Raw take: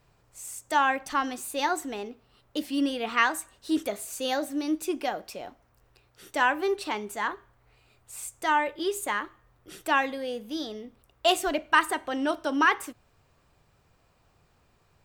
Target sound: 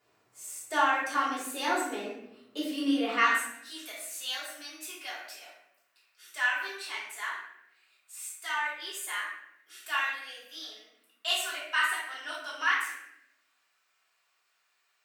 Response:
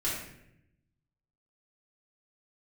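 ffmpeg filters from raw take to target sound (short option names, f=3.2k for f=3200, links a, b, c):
-filter_complex "[0:a]asetnsamples=n=441:p=0,asendcmd='3.24 highpass f 1500',highpass=300[a];[1:a]atrim=start_sample=2205[b];[a][b]afir=irnorm=-1:irlink=0,volume=-6.5dB"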